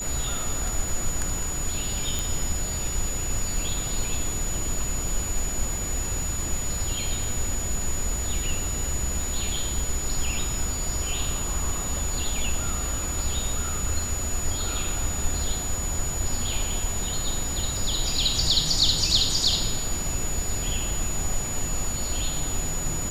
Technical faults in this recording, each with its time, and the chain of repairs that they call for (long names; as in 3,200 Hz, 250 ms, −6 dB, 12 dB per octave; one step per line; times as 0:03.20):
surface crackle 38 per second −33 dBFS
whistle 6,900 Hz −30 dBFS
0:02.19: click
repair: click removal
notch filter 6,900 Hz, Q 30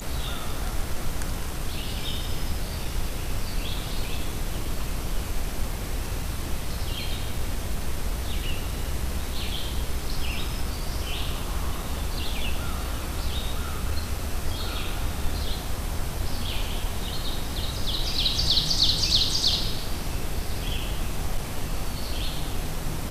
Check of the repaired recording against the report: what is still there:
0:02.19: click